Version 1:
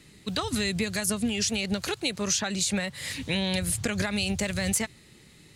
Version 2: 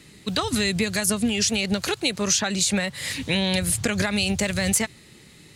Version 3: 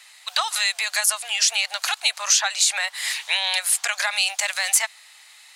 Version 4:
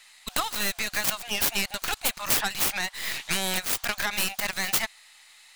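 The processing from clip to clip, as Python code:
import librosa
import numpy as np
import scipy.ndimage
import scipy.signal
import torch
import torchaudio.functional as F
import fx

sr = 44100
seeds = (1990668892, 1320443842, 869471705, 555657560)

y1 = fx.low_shelf(x, sr, hz=74.0, db=-5.0)
y1 = F.gain(torch.from_numpy(y1), 5.0).numpy()
y2 = scipy.signal.sosfilt(scipy.signal.butter(8, 710.0, 'highpass', fs=sr, output='sos'), y1)
y2 = F.gain(torch.from_numpy(y2), 4.0).numpy()
y3 = fx.tracing_dist(y2, sr, depth_ms=0.42)
y3 = F.gain(torch.from_numpy(y3), -4.5).numpy()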